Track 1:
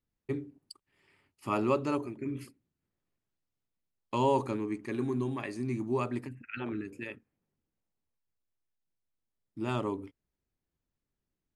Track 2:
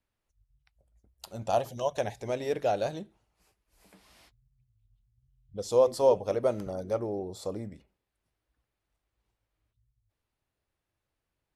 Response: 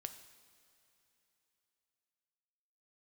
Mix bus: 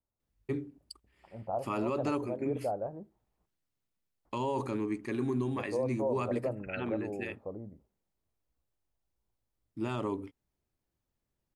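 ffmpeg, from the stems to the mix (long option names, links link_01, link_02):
-filter_complex "[0:a]adelay=200,volume=1dB[link_01];[1:a]lowpass=frequency=1100:width=0.5412,lowpass=frequency=1100:width=1.3066,volume=-6dB,asplit=3[link_02][link_03][link_04];[link_02]atrim=end=3.46,asetpts=PTS-STARTPTS,afade=type=out:start_time=3.456:duration=0.004:curve=hsin[link_05];[link_03]atrim=start=3.46:end=4.25,asetpts=PTS-STARTPTS,volume=0[link_06];[link_04]atrim=start=4.25,asetpts=PTS-STARTPTS,afade=type=in:duration=0.004:curve=hsin[link_07];[link_05][link_06][link_07]concat=n=3:v=0:a=1[link_08];[link_01][link_08]amix=inputs=2:normalize=0,alimiter=limit=-23dB:level=0:latency=1:release=48"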